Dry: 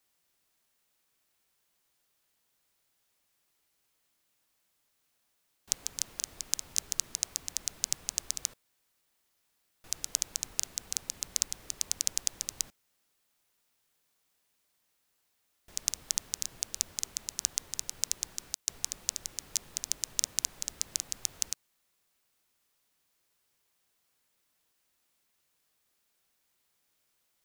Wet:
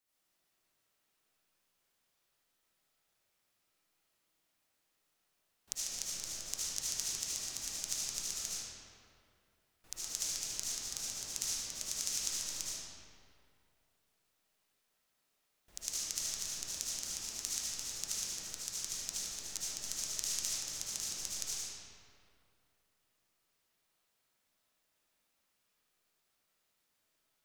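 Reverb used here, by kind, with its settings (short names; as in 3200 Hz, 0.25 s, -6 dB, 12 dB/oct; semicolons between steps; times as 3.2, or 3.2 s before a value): digital reverb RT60 2.4 s, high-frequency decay 0.65×, pre-delay 35 ms, DRR -9 dB; gain -10.5 dB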